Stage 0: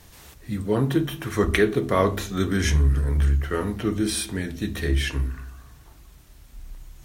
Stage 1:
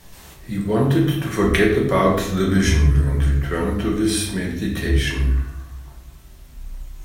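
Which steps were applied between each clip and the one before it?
convolution reverb RT60 0.80 s, pre-delay 5 ms, DRR −1 dB
level +1 dB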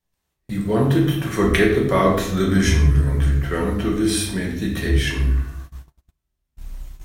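noise gate −34 dBFS, range −34 dB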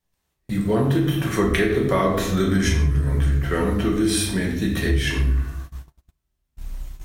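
downward compressor, threshold −17 dBFS, peak gain reduction 7 dB
level +1.5 dB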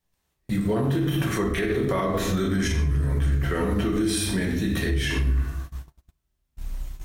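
brickwall limiter −16 dBFS, peak gain reduction 11 dB

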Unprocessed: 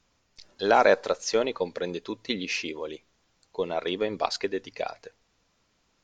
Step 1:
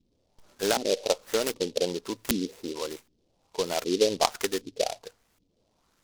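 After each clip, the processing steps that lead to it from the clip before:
downward compressor 6 to 1, threshold −22 dBFS, peak gain reduction 8 dB
auto-filter low-pass saw up 1.3 Hz 260–3,400 Hz
short delay modulated by noise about 4,100 Hz, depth 0.11 ms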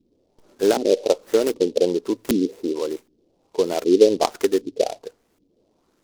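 parametric band 350 Hz +13.5 dB 1.7 octaves
level −1.5 dB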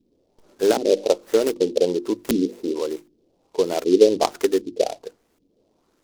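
mains-hum notches 50/100/150/200/250/300/350 Hz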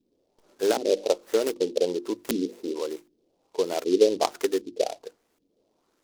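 low-shelf EQ 250 Hz −8.5 dB
level −3 dB

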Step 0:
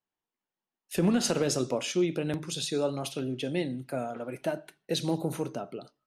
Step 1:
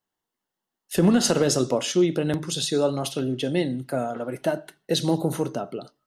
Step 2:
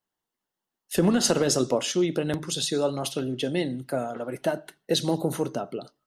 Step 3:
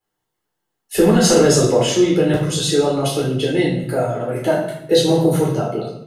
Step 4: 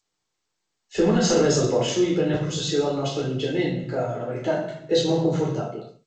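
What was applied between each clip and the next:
notch filter 2,400 Hz, Q 5.7; level +6.5 dB
harmonic and percussive parts rebalanced harmonic −4 dB
convolution reverb RT60 0.75 s, pre-delay 9 ms, DRR −5 dB; level −2 dB
fade-out on the ending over 0.50 s; level −6.5 dB; G.722 64 kbit/s 16,000 Hz

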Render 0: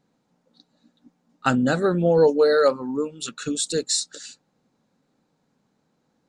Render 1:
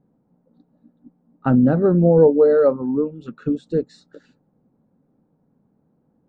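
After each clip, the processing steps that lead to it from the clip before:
Bessel low-pass filter 730 Hz, order 2
low-shelf EQ 380 Hz +7 dB
level +2 dB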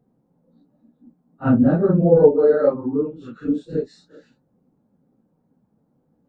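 random phases in long frames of 100 ms
level −1 dB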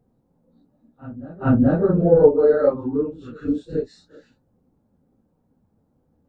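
low shelf with overshoot 110 Hz +9 dB, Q 1.5
backwards echo 428 ms −19.5 dB

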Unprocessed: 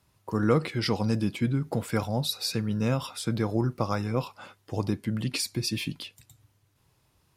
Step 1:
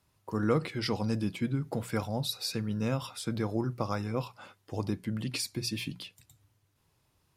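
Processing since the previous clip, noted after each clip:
mains-hum notches 60/120/180 Hz
level −4 dB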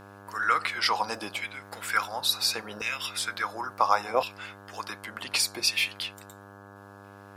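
auto-filter high-pass saw down 0.71 Hz 660–2,300 Hz
hum with harmonics 100 Hz, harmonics 17, −57 dBFS −2 dB per octave
level +8.5 dB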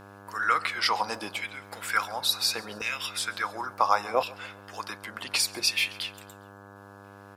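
repeating echo 136 ms, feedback 51%, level −22.5 dB

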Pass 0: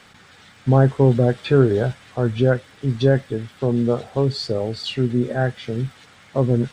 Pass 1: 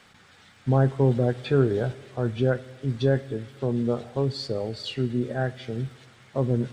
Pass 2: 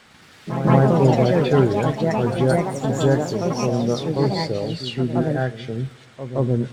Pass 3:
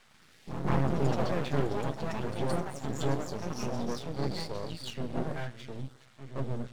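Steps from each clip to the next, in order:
convolution reverb RT60 1.7 s, pre-delay 18 ms, DRR 18 dB; level −6 dB
delay with pitch and tempo change per echo 108 ms, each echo +4 semitones, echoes 3; backwards echo 171 ms −10.5 dB; level +3.5 dB
auto-filter notch saw up 1.5 Hz 250–2,900 Hz; half-wave rectification; level −7 dB

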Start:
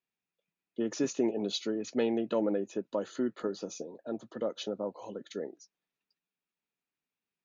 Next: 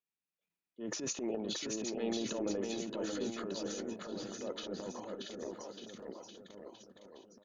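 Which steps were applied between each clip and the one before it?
transient designer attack −9 dB, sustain +11 dB
on a send: bouncing-ball delay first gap 630 ms, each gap 0.9×, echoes 5
on the sum: level −7.5 dB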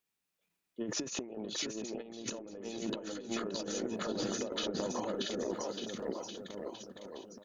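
compressor whose output falls as the input rises −42 dBFS, ratio −0.5
level +5 dB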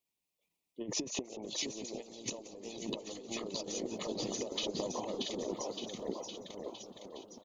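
Butterworth band-reject 1,500 Hz, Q 1.7
harmonic and percussive parts rebalanced harmonic −9 dB
echo with shifted repeats 178 ms, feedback 61%, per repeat +95 Hz, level −17 dB
level +1.5 dB

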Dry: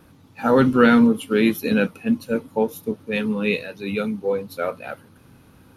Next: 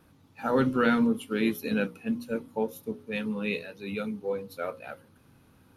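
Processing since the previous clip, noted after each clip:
mains-hum notches 60/120/180/240/300/360/420/480/540 Hz
level −8 dB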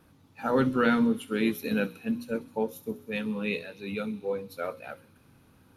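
delay with a high-pass on its return 65 ms, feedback 78%, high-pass 3,800 Hz, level −14.5 dB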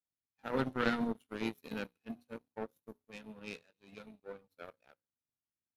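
power curve on the samples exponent 2
level −3 dB

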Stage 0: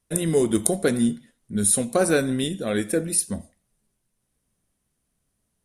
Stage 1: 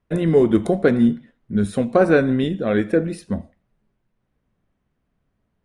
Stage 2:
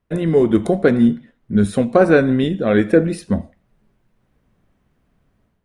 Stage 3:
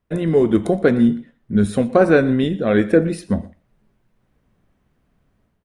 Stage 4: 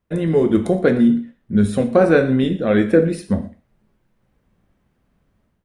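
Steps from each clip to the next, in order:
low-pass filter 2,100 Hz 12 dB per octave; level +5.5 dB
automatic gain control gain up to 9 dB
single-tap delay 119 ms −20.5 dB; level −1 dB
reverb whose tail is shaped and stops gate 150 ms falling, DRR 7 dB; level −1 dB

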